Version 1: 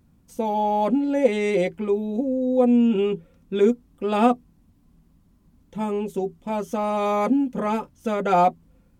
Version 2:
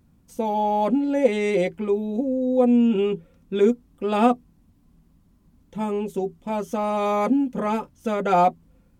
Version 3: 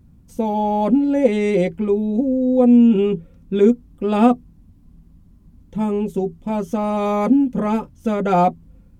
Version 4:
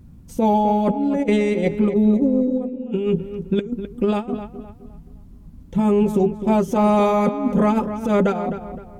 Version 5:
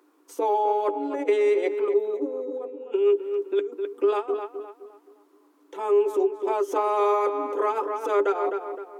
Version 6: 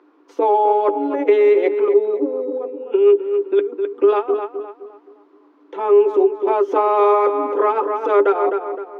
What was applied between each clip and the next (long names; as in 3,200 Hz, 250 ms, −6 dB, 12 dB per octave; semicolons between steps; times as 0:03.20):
no processing that can be heard
low-shelf EQ 260 Hz +12 dB
compressor whose output falls as the input rises −20 dBFS, ratio −0.5; feedback echo with a low-pass in the loop 258 ms, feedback 36%, low-pass 2,600 Hz, level −10 dB; level +1.5 dB
downward compressor 4 to 1, threshold −20 dBFS, peak gain reduction 7.5 dB; Chebyshev high-pass with heavy ripple 290 Hz, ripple 9 dB; level +6 dB
high-frequency loss of the air 260 metres; level +8.5 dB